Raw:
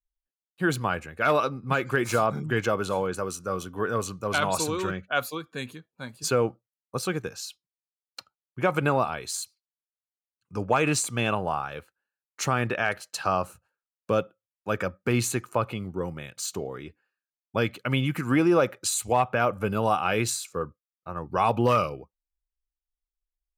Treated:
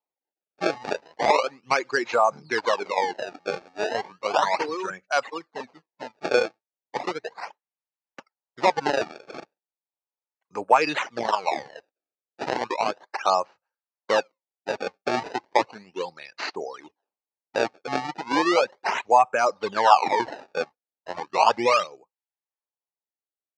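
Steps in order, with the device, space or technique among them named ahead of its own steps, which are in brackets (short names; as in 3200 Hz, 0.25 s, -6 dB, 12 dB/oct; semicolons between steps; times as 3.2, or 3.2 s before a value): circuit-bent sampling toy (decimation with a swept rate 25×, swing 160% 0.35 Hz; speaker cabinet 460–5200 Hz, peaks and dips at 870 Hz +6 dB, 1400 Hz -4 dB, 3300 Hz -8 dB); 19.52–21.25 bell 1000 Hz +5 dB 0.85 oct; reverb removal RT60 1.6 s; gain +5 dB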